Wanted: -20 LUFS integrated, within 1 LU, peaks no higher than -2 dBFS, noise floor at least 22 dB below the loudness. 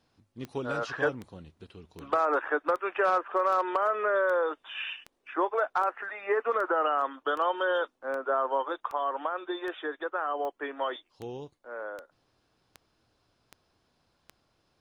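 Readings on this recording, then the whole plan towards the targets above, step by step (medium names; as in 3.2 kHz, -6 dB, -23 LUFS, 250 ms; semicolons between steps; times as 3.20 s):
clicks found 19; loudness -29.5 LUFS; peak level -16.5 dBFS; loudness target -20.0 LUFS
-> de-click; trim +9.5 dB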